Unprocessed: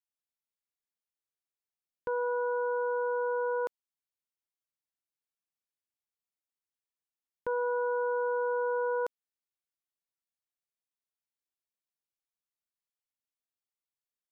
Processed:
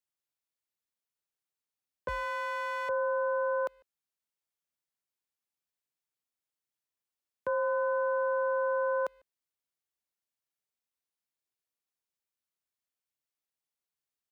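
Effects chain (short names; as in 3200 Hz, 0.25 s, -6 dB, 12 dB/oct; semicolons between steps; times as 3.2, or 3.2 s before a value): 2.08–2.89 minimum comb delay 0.83 ms; frequency shift +42 Hz; speakerphone echo 0.15 s, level -28 dB; gain +1 dB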